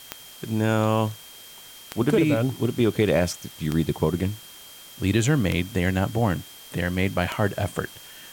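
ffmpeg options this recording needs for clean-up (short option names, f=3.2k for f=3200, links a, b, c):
-af "adeclick=t=4,bandreject=f=3.2k:w=30,afwtdn=0.0056"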